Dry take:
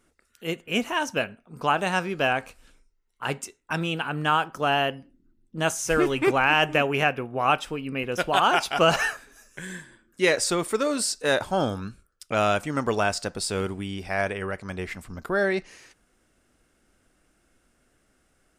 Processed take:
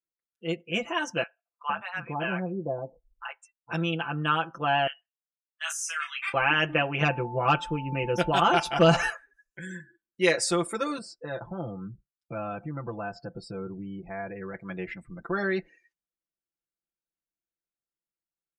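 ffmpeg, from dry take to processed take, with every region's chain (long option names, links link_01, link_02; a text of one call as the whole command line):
ffmpeg -i in.wav -filter_complex "[0:a]asettb=1/sr,asplit=3[link_01][link_02][link_03];[link_01]atrim=end=1.234[link_04];[link_02]atrim=start=1.23:end=3.73,asetpts=PTS-STARTPTS,afade=type=in:duration=0.004:curve=qsin,afade=type=out:start_time=2.496:duration=0.004:curve=qsin,equalizer=frequency=12000:width_type=o:width=2.9:gain=-11.5,acrossover=split=800[link_05][link_06];[link_05]adelay=460[link_07];[link_07][link_06]amix=inputs=2:normalize=0,atrim=end_sample=110250[link_08];[link_03]atrim=start=3.726[link_09];[link_04][link_08]acrossfade=duration=0.004:curve1=hsin:curve2=qsin[link_10];[link_10][link_09]acrossfade=duration=0.004:curve1=qsin:curve2=hsin,asettb=1/sr,asplit=3[link_11][link_12][link_13];[link_11]atrim=end=4.874[link_14];[link_12]atrim=start=4.87:end=6.34,asetpts=PTS-STARTPTS,afade=type=in:duration=0.004:curve=qsin,afade=type=out:start_time=1.466:duration=0.004:curve=qsin,highpass=frequency=1300:width=0.5412,highpass=frequency=1300:width=1.3066,asplit=2[link_15][link_16];[link_16]adelay=28,volume=-6dB[link_17];[link_15][link_17]amix=inputs=2:normalize=0,atrim=end_sample=64827[link_18];[link_13]atrim=start=6.336[link_19];[link_14][link_18]acrossfade=duration=0.004:curve1=hsin:curve2=qsin[link_20];[link_20][link_19]acrossfade=duration=0.004:curve1=qsin:curve2=hsin,asettb=1/sr,asplit=3[link_21][link_22][link_23];[link_21]atrim=end=7.014[link_24];[link_22]atrim=start=7.01:end=9.09,asetpts=PTS-STARTPTS,afade=type=in:duration=0.004:curve=qsin,afade=type=out:start_time=2.076:duration=0.004:curve=qsin,lowshelf=frequency=310:gain=9.5,aeval=exprs='val(0)+0.0158*sin(2*PI*880*n/s)':channel_layout=same,volume=11.5dB,asoftclip=hard,volume=-11.5dB[link_25];[link_23]atrim=start=9.086[link_26];[link_24][link_25]acrossfade=duration=0.004:curve1=hsin:curve2=qsin[link_27];[link_27][link_26]acrossfade=duration=0.004:curve1=qsin:curve2=hsin,asettb=1/sr,asplit=3[link_28][link_29][link_30];[link_28]atrim=end=10.984[link_31];[link_29]atrim=start=10.98:end=14.54,asetpts=PTS-STARTPTS,afade=type=in:duration=0.004:curve=qsin,afade=type=out:start_time=3.556:duration=0.004:curve=qsin,lowpass=frequency=1300:poles=1,equalizer=frequency=120:width=2.7:gain=9,acompressor=threshold=-32dB:ratio=2:attack=3.2:release=140:knee=1:detection=peak[link_32];[link_30]atrim=start=14.536[link_33];[link_31][link_32]acrossfade=duration=0.004:curve1=hsin:curve2=qsin[link_34];[link_34][link_33]acrossfade=duration=0.004:curve1=qsin:curve2=hsin,highpass=frequency=40:poles=1,afftdn=noise_reduction=34:noise_floor=-42,aecho=1:1:5.9:0.99,volume=-5.5dB" out.wav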